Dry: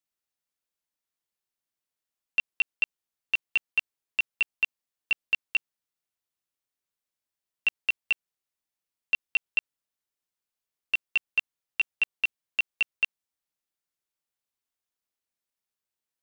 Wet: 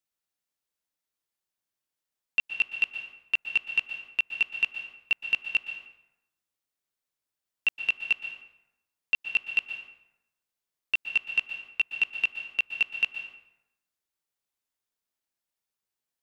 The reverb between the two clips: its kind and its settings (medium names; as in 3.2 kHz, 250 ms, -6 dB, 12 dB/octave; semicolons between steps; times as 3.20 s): plate-style reverb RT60 0.92 s, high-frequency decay 0.65×, pre-delay 110 ms, DRR 7 dB